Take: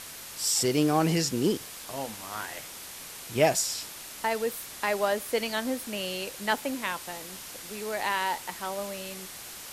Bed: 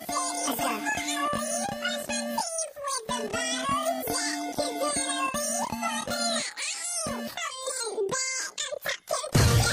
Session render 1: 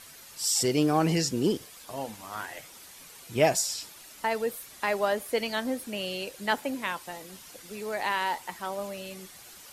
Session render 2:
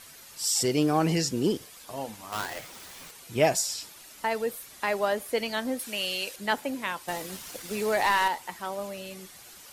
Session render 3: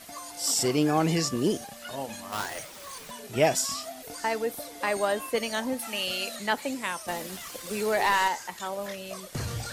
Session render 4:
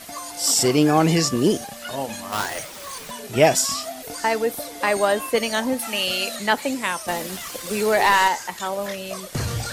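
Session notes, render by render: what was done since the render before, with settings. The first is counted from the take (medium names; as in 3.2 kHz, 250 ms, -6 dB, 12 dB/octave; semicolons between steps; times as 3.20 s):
noise reduction 9 dB, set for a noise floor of -43 dBFS
2.32–3.11 s: square wave that keeps the level; 5.79–6.36 s: tilt shelf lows -6.5 dB, about 800 Hz; 7.08–8.28 s: waveshaping leveller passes 2
add bed -12.5 dB
trim +7 dB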